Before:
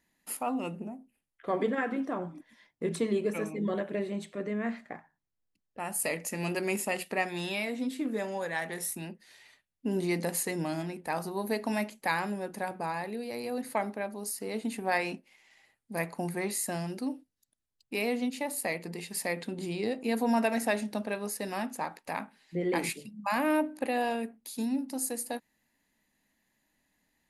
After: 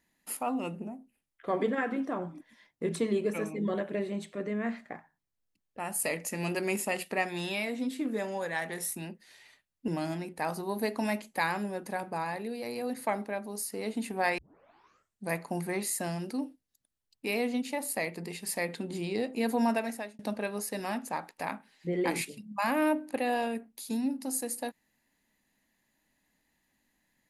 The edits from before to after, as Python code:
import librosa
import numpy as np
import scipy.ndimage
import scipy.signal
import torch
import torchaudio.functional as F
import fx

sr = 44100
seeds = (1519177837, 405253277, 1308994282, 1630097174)

y = fx.edit(x, sr, fx.cut(start_s=9.88, length_s=0.68),
    fx.tape_start(start_s=15.06, length_s=0.92),
    fx.fade_out_span(start_s=20.31, length_s=0.56), tone=tone)